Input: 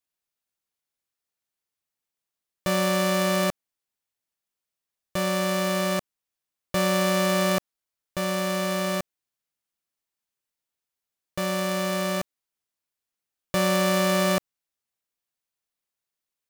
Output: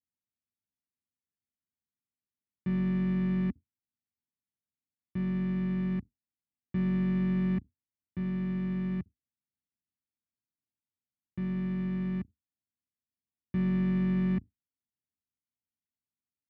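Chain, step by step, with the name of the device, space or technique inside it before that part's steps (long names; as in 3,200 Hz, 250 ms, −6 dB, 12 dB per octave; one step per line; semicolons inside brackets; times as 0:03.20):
sub-octave bass pedal (sub-octave generator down 2 octaves, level −2 dB; loudspeaker in its box 77–2,100 Hz, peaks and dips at 150 Hz −4 dB, 280 Hz +5 dB, 410 Hz +7 dB, 590 Hz −6 dB, 860 Hz +9 dB, 2,000 Hz +7 dB)
drawn EQ curve 240 Hz 0 dB, 550 Hz −28 dB, 1,200 Hz −25 dB, 5,400 Hz −5 dB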